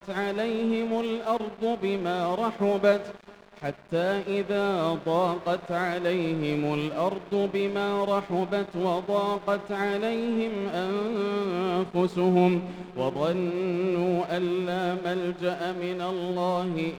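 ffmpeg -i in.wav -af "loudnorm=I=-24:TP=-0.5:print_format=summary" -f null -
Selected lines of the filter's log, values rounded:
Input Integrated:    -27.6 LUFS
Input True Peak:     -10.0 dBTP
Input LRA:             2.0 LU
Input Threshold:     -37.6 LUFS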